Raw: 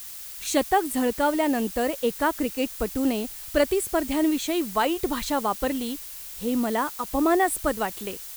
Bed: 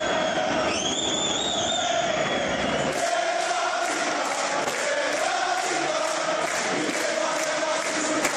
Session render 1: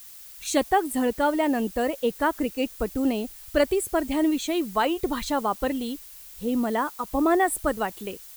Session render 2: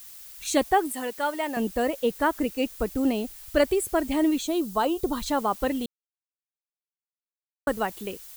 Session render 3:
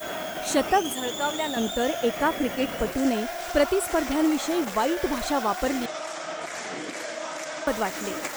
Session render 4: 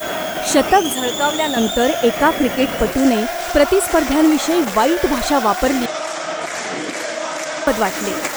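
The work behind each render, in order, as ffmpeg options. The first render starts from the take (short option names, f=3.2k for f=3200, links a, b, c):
-af "afftdn=nr=7:nf=-39"
-filter_complex "[0:a]asettb=1/sr,asplit=3[a][b][c];[a]atrim=end=0.924[d];[b]atrim=start=0.92:end=1.57,asetpts=PTS-STARTPTS,afade=t=in:d=0.004:c=qsin,afade=t=out:st=0.646:d=0.004:c=qsin,highpass=f=940:p=1[e];[c]atrim=start=1.566[f];[d][e]acrossfade=d=0.004:c1=hsin:c2=qsin[g];[g][f]acrossfade=d=0.004:c1=qsin:c2=hsin,asettb=1/sr,asplit=3[h][i][j];[h]atrim=end=4.424[k];[i]atrim=start=4.42:end=5.26,asetpts=PTS-STARTPTS,afade=t=in:d=0.004:c=qsin,afade=t=out:st=0.836:d=0.004:c=qsin,equalizer=f=2.1k:t=o:w=0.72:g=-13[l];[j]atrim=start=5.256[m];[k][l]acrossfade=d=0.004:c1=hsin:c2=qsin[n];[n][m]acrossfade=d=0.004:c1=qsin:c2=hsin,asplit=3[o][p][q];[o]atrim=end=5.86,asetpts=PTS-STARTPTS,afade=t=out:st=5.856:d=0.004:c=hsin[r];[p]atrim=start=5.86:end=7.67,asetpts=PTS-STARTPTS,volume=0[s];[q]atrim=start=7.67,asetpts=PTS-STARTPTS,afade=t=in:d=0.004:c=hsin[t];[r][s][t]concat=n=3:v=0:a=1"
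-filter_complex "[1:a]volume=-8.5dB[a];[0:a][a]amix=inputs=2:normalize=0"
-af "volume=9.5dB,alimiter=limit=-1dB:level=0:latency=1"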